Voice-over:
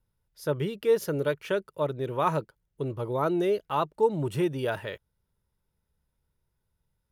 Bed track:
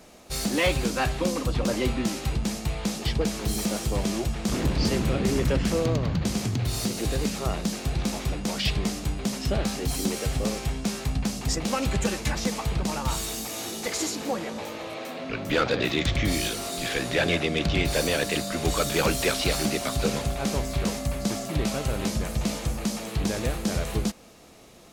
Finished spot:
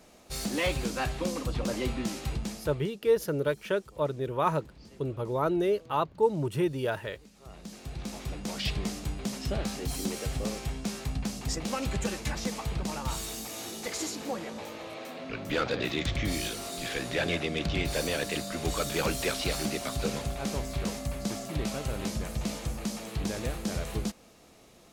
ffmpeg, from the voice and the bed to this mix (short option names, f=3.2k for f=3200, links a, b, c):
-filter_complex "[0:a]adelay=2200,volume=-1dB[a];[1:a]volume=17dB,afade=t=out:st=2.35:d=0.56:silence=0.0749894,afade=t=in:st=7.35:d=1.3:silence=0.0749894[b];[a][b]amix=inputs=2:normalize=0"